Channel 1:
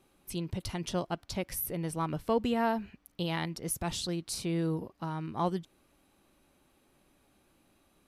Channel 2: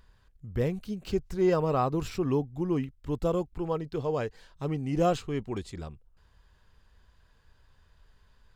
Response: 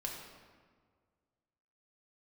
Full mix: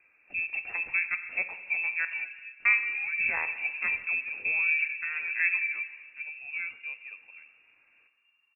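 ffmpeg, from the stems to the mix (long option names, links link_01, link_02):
-filter_complex "[0:a]highpass=93,volume=-1dB,asplit=3[link_01][link_02][link_03];[link_01]atrim=end=2.05,asetpts=PTS-STARTPTS,afade=type=out:start_time=2.046:duration=0.004:curve=hsin[link_04];[link_02]atrim=start=2.05:end=2.65,asetpts=PTS-STARTPTS,volume=0[link_05];[link_03]atrim=start=2.65,asetpts=PTS-STARTPTS,afade=type=in:duration=0.004:curve=hsin[link_06];[link_04][link_05][link_06]concat=n=3:v=0:a=1,asplit=2[link_07][link_08];[link_08]volume=-4dB[link_09];[1:a]adelay=1550,volume=-14.5dB,asplit=2[link_10][link_11];[link_11]volume=-11dB[link_12];[2:a]atrim=start_sample=2205[link_13];[link_09][link_12]amix=inputs=2:normalize=0[link_14];[link_14][link_13]afir=irnorm=-1:irlink=0[link_15];[link_07][link_10][link_15]amix=inputs=3:normalize=0,equalizer=frequency=450:width_type=o:width=0.23:gain=13.5,lowpass=frequency=2400:width_type=q:width=0.5098,lowpass=frequency=2400:width_type=q:width=0.6013,lowpass=frequency=2400:width_type=q:width=0.9,lowpass=frequency=2400:width_type=q:width=2.563,afreqshift=-2800"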